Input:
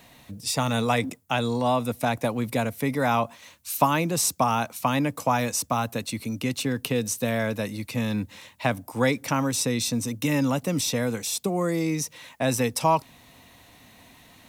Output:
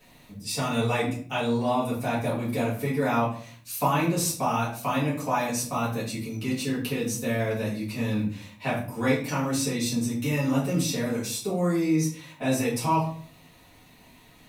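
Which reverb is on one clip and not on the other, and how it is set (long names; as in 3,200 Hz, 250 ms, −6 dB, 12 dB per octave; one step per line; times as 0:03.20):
rectangular room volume 47 cubic metres, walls mixed, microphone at 2 metres
level −12.5 dB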